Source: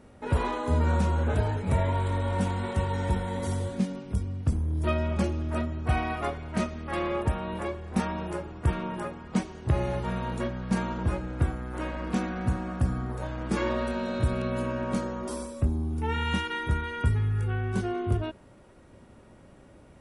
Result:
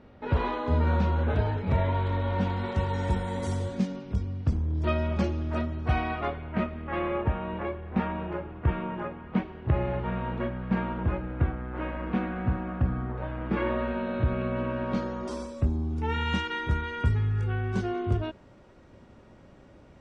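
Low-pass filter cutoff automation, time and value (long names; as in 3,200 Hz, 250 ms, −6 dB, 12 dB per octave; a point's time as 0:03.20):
low-pass filter 24 dB per octave
0:02.43 4,400 Hz
0:03.31 9,400 Hz
0:04.11 5,700 Hz
0:05.85 5,700 Hz
0:06.56 2,900 Hz
0:14.56 2,900 Hz
0:15.26 6,600 Hz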